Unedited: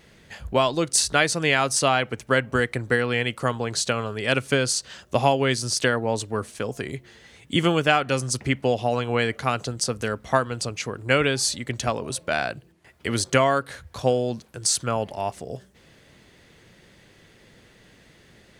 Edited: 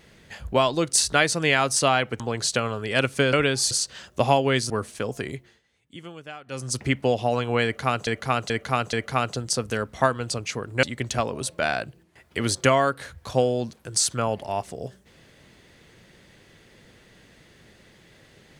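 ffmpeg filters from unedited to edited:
ffmpeg -i in.wav -filter_complex "[0:a]asplit=11[link_01][link_02][link_03][link_04][link_05][link_06][link_07][link_08][link_09][link_10][link_11];[link_01]atrim=end=2.202[link_12];[link_02]atrim=start=3.528:end=4.662[link_13];[link_03]atrim=start=11.138:end=11.522[link_14];[link_04]atrim=start=4.658:end=5.652[link_15];[link_05]atrim=start=6.298:end=7.22,asetpts=PTS-STARTPTS,afade=type=out:start_time=0.582:duration=0.34:silence=0.1[link_16];[link_06]atrim=start=7.22:end=8.06,asetpts=PTS-STARTPTS,volume=-20dB[link_17];[link_07]atrim=start=8.06:end=9.672,asetpts=PTS-STARTPTS,afade=type=in:duration=0.34:silence=0.1[link_18];[link_08]atrim=start=9.238:end=9.672[link_19];[link_09]atrim=start=9.238:end=9.672[link_20];[link_10]atrim=start=9.238:end=11.142[link_21];[link_11]atrim=start=11.518[link_22];[link_12][link_13]acrossfade=duration=0.004:curve1=hsin:curve2=hsin[link_23];[link_23][link_14]acrossfade=duration=0.004:curve1=hsin:curve2=hsin[link_24];[link_24][link_15]acrossfade=duration=0.004:curve1=hsin:curve2=hsin[link_25];[link_16][link_17][link_18]concat=n=3:v=0:a=1[link_26];[link_25][link_26]acrossfade=duration=0.004:curve1=hsin:curve2=hsin[link_27];[link_27][link_19]acrossfade=duration=0.004:curve1=hsin:curve2=hsin[link_28];[link_28][link_20]acrossfade=duration=0.004:curve1=hsin:curve2=hsin[link_29];[link_29][link_21]acrossfade=duration=0.004:curve1=hsin:curve2=hsin[link_30];[link_30][link_22]acrossfade=duration=0.004:curve1=hsin:curve2=hsin" out.wav

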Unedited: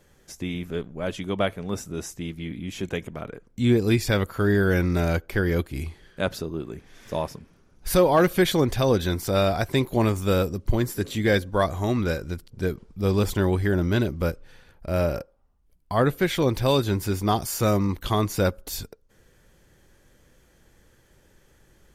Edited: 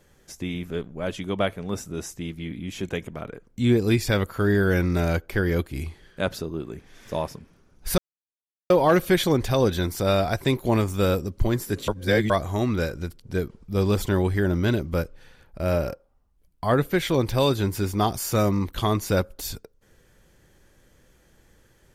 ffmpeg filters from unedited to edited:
ffmpeg -i in.wav -filter_complex "[0:a]asplit=4[link_01][link_02][link_03][link_04];[link_01]atrim=end=7.98,asetpts=PTS-STARTPTS,afade=type=out:start_time=7.976:duration=0.004:curve=hsin,apad=pad_dur=0.72[link_05];[link_02]atrim=start=7.98:end=11.162,asetpts=PTS-STARTPTS,afade=type=in:duration=0.004:curve=hsin[link_06];[link_03]atrim=start=11.158:end=11.582,asetpts=PTS-STARTPTS,areverse[link_07];[link_04]atrim=start=11.578[link_08];[link_05][link_06]concat=n=2:v=0:a=1[link_09];[link_09][link_07]acrossfade=duration=0.004:curve1=hsin:curve2=hsin[link_10];[link_10][link_08]acrossfade=duration=0.004:curve1=hsin:curve2=hsin" out.wav

